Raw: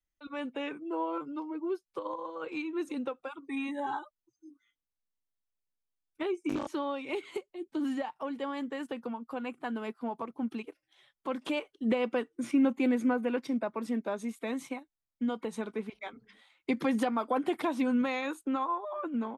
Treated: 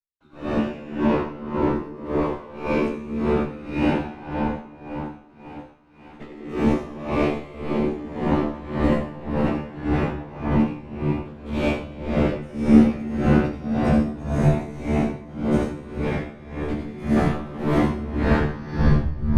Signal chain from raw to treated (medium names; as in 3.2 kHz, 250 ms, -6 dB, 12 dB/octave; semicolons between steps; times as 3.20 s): tape stop on the ending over 1.59 s; tilt EQ +2 dB/octave; waveshaping leveller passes 5; whisper effect; RIAA curve playback; feedback comb 74 Hz, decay 0.43 s, harmonics all, mix 100%; thinning echo 546 ms, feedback 79%, high-pass 470 Hz, level -17 dB; reverberation RT60 4.3 s, pre-delay 65 ms, DRR -10 dB; logarithmic tremolo 1.8 Hz, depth 18 dB